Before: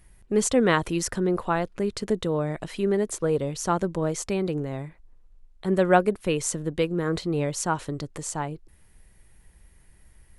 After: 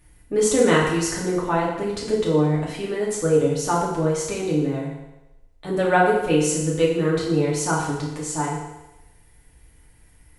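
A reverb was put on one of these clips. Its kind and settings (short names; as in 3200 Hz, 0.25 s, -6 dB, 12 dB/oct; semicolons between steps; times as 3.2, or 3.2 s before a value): FDN reverb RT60 0.98 s, low-frequency decay 0.8×, high-frequency decay 0.95×, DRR -5.5 dB; gain -2.5 dB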